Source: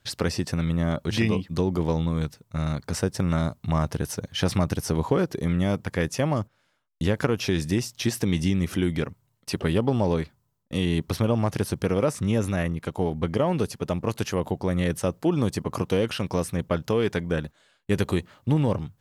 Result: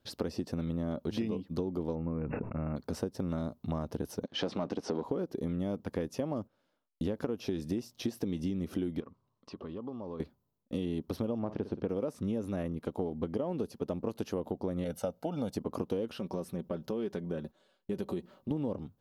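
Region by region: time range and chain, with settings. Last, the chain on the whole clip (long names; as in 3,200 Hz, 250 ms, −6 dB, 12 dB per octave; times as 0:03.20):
0:01.95–0:02.76: linear-phase brick-wall low-pass 2,800 Hz + level that may fall only so fast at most 23 dB per second
0:04.23–0:05.04: leveller curve on the samples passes 2 + band-pass filter 240–6,600 Hz + high-frequency loss of the air 59 metres
0:09.00–0:10.20: low-pass filter 5,700 Hz 24 dB per octave + parametric band 1,100 Hz +14 dB 0.3 octaves + downward compressor 3 to 1, threshold −40 dBFS
0:11.39–0:11.89: low-pass filter 2,900 Hz + flutter between parallel walls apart 9 metres, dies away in 0.23 s
0:14.84–0:15.56: low-shelf EQ 210 Hz −9 dB + comb filter 1.4 ms, depth 77%
0:16.18–0:18.51: comb filter 5.3 ms, depth 50% + downward compressor 2 to 1, threshold −32 dBFS
whole clip: graphic EQ with 10 bands 125 Hz −6 dB, 250 Hz +8 dB, 500 Hz +5 dB, 2,000 Hz −8 dB, 8,000 Hz −9 dB; downward compressor, threshold −23 dBFS; level −7 dB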